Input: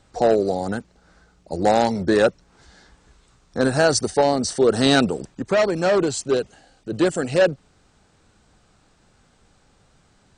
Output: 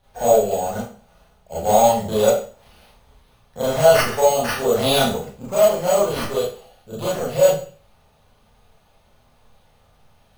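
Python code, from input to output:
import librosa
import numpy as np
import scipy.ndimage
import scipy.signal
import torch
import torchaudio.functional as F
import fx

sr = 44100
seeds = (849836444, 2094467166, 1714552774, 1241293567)

y = fx.fixed_phaser(x, sr, hz=740.0, stages=4)
y = np.repeat(y[::6], 6)[:len(y)]
y = fx.rev_schroeder(y, sr, rt60_s=0.41, comb_ms=26, drr_db=-8.5)
y = F.gain(torch.from_numpy(y), -4.5).numpy()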